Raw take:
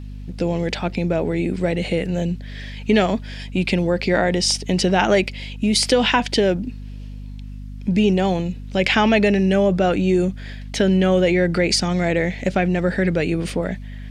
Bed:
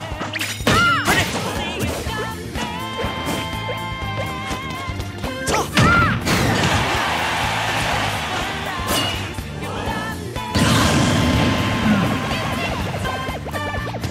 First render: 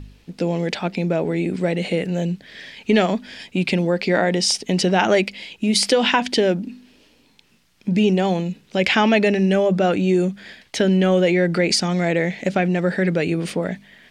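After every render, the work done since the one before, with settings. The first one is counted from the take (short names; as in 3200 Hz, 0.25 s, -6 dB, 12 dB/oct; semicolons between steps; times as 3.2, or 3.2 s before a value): de-hum 50 Hz, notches 5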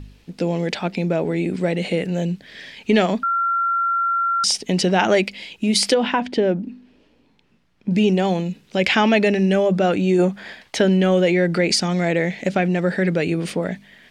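3.23–4.44 bleep 1370 Hz -17 dBFS; 5.94–7.91 LPF 1200 Hz 6 dB/oct; 10.18–10.94 bell 890 Hz +14 dB -> +2.5 dB 1.7 oct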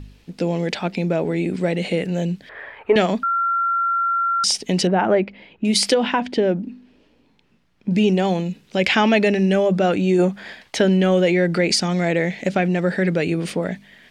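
2.49–2.96 EQ curve 110 Hz 0 dB, 190 Hz -17 dB, 430 Hz +6 dB, 1200 Hz +15 dB, 5900 Hz -30 dB, 11000 Hz -17 dB; 4.87–5.65 LPF 1400 Hz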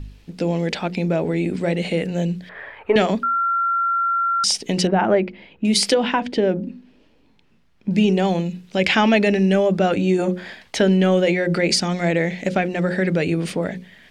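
low shelf 90 Hz +7 dB; notches 60/120/180/240/300/360/420/480/540 Hz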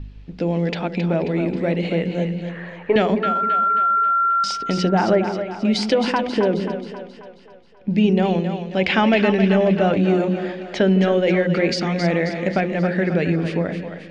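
air absorption 160 m; on a send: split-band echo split 460 Hz, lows 0.157 s, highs 0.268 s, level -8 dB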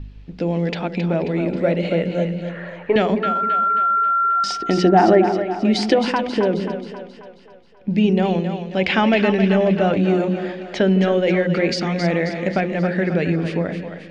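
1.46–2.86 small resonant body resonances 590/1400 Hz, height 11 dB; 4.24–5.99 small resonant body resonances 340/720/1800 Hz, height 11 dB, ringing for 40 ms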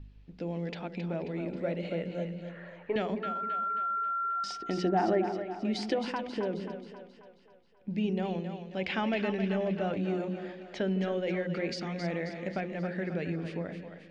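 gain -14 dB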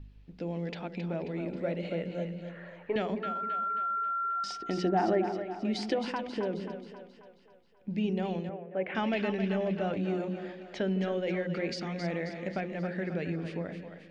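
8.49–8.95 speaker cabinet 170–2000 Hz, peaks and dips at 230 Hz -9 dB, 430 Hz +4 dB, 620 Hz +7 dB, 890 Hz -4 dB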